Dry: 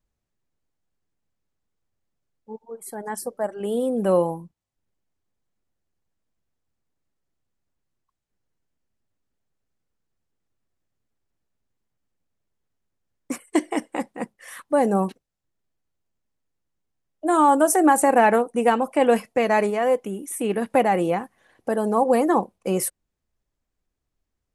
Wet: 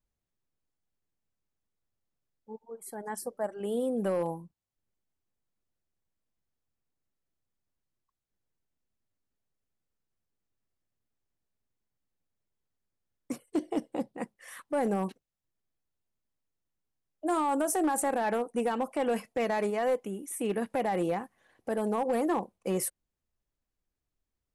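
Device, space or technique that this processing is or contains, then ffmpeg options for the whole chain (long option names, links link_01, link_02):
limiter into clipper: -filter_complex "[0:a]asettb=1/sr,asplit=3[link_01][link_02][link_03];[link_01]atrim=end=13.324[link_04];[link_02]atrim=start=13.32:end=14.18,asetpts=PTS-STARTPTS,afade=type=in:duration=0.004:curve=qsin,afade=type=out:start_time=0.856:duration=0.004:curve=qsin,equalizer=frequency=125:width_type=o:width=1:gain=10,equalizer=frequency=500:width_type=o:width=1:gain=4,equalizer=frequency=1000:width_type=o:width=1:gain=-5,equalizer=frequency=2000:width_type=o:width=1:gain=-11,equalizer=frequency=4000:width_type=o:width=1:gain=4,equalizer=frequency=8000:width_type=o:width=1:gain=-9[link_05];[link_03]atrim=start=14.176[link_06];[link_04][link_05]acrossfade=duration=0.004:curve1=hsin:curve2=qsin[link_07];[link_07][link_06]acrossfade=duration=0.004:curve1=qsin:curve2=hsin,alimiter=limit=-13dB:level=0:latency=1:release=56,asoftclip=type=hard:threshold=-15.5dB,volume=-6.5dB"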